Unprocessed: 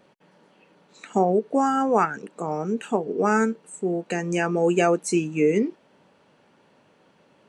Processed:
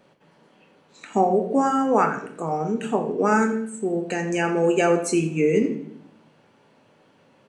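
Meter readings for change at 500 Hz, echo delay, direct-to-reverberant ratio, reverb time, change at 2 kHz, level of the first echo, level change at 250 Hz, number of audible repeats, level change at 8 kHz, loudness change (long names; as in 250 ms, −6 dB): +1.0 dB, 85 ms, 4.5 dB, 0.65 s, +1.5 dB, −14.5 dB, +1.5 dB, 1, +1.0 dB, +1.0 dB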